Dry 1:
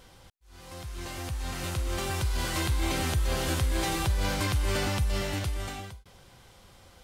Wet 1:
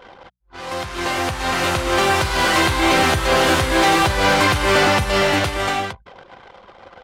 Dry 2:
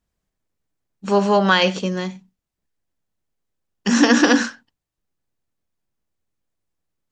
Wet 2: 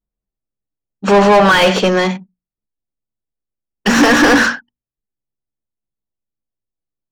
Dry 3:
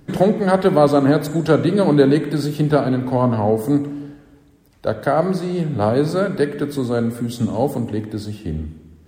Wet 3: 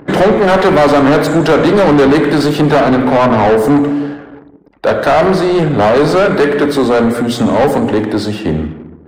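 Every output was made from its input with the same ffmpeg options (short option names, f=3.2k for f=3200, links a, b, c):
-filter_complex "[0:a]asplit=2[a][b];[b]highpass=f=720:p=1,volume=30dB,asoftclip=type=tanh:threshold=-1dB[c];[a][c]amix=inputs=2:normalize=0,lowpass=f=1.7k:p=1,volume=-6dB,bandreject=f=60:t=h:w=6,bandreject=f=120:t=h:w=6,bandreject=f=180:t=h:w=6,bandreject=f=240:t=h:w=6,anlmdn=3.98"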